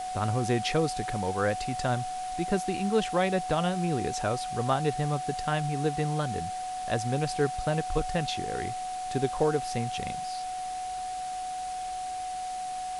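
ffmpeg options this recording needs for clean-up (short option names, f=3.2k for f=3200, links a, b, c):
-af "adeclick=t=4,bandreject=f=740:w=30,afwtdn=0.0063"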